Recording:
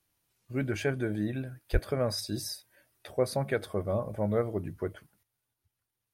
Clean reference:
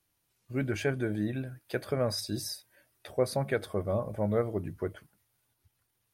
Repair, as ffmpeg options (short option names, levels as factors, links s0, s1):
-filter_complex "[0:a]asplit=3[s0][s1][s2];[s0]afade=t=out:st=1.72:d=0.02[s3];[s1]highpass=f=140:w=0.5412,highpass=f=140:w=1.3066,afade=t=in:st=1.72:d=0.02,afade=t=out:st=1.84:d=0.02[s4];[s2]afade=t=in:st=1.84:d=0.02[s5];[s3][s4][s5]amix=inputs=3:normalize=0,asetnsamples=n=441:p=0,asendcmd='5.23 volume volume 8.5dB',volume=1"